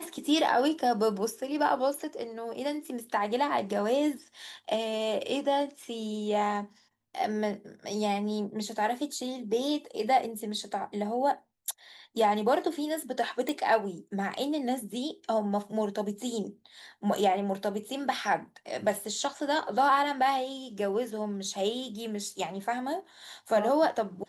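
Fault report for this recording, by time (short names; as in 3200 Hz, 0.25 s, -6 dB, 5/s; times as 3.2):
13.49 pop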